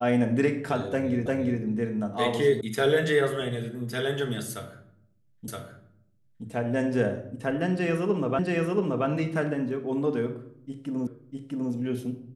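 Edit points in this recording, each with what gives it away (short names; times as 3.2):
1.26 repeat of the last 0.35 s
2.61 sound cut off
5.48 repeat of the last 0.97 s
8.39 repeat of the last 0.68 s
11.07 repeat of the last 0.65 s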